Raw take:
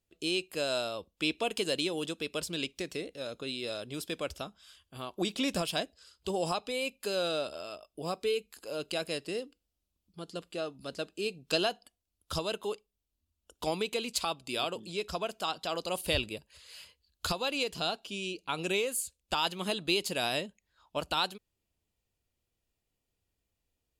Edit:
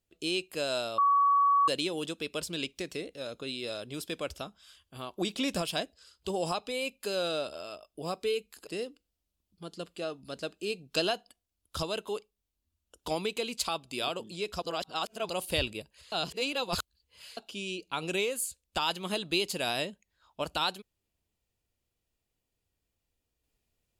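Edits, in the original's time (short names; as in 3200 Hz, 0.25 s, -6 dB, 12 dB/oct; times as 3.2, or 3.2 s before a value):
0.98–1.68 bleep 1130 Hz -20.5 dBFS
8.67–9.23 cut
15.18–15.85 reverse
16.68–17.93 reverse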